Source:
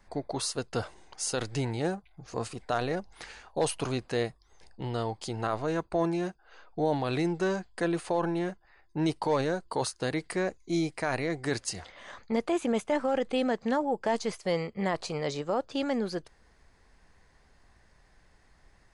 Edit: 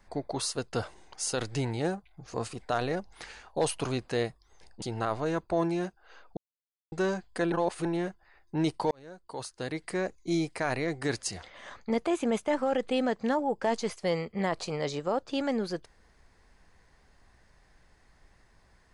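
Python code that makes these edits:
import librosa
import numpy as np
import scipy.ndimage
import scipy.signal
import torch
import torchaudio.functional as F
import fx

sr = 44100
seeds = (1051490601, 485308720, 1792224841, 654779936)

y = fx.edit(x, sr, fx.cut(start_s=4.82, length_s=0.42),
    fx.silence(start_s=6.79, length_s=0.55),
    fx.reverse_span(start_s=7.94, length_s=0.33),
    fx.fade_in_span(start_s=9.33, length_s=1.26), tone=tone)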